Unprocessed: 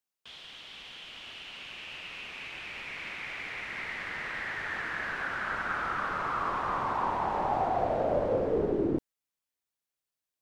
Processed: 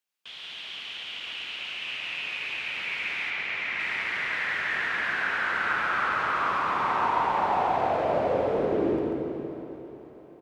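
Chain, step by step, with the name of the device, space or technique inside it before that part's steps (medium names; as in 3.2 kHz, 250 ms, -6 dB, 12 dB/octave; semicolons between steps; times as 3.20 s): PA in a hall (high-pass 150 Hz 6 dB/octave; peaking EQ 2.6 kHz +6.5 dB 1.5 oct; delay 139 ms -4.5 dB; reverberation RT60 2.2 s, pre-delay 70 ms, DRR 3 dB); 3.30–3.80 s: distance through air 63 m; echo that smears into a reverb 523 ms, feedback 44%, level -15 dB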